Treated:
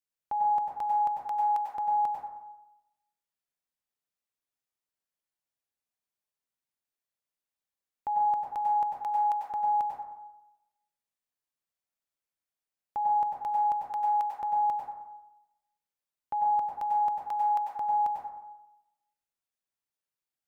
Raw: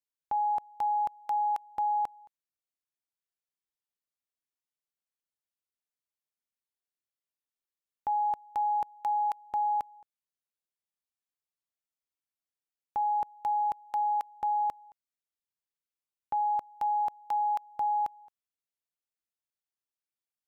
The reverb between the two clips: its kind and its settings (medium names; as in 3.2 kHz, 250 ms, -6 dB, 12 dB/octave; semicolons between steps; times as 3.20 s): plate-style reverb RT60 0.94 s, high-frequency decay 0.35×, pre-delay 85 ms, DRR -0.5 dB; trim -1.5 dB